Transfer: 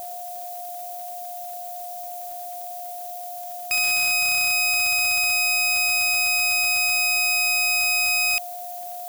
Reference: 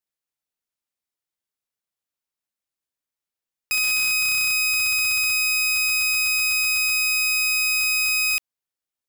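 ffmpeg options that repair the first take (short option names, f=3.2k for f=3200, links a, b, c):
-af "adeclick=t=4,bandreject=f=710:w=30,afftdn=nr=30:nf=-34"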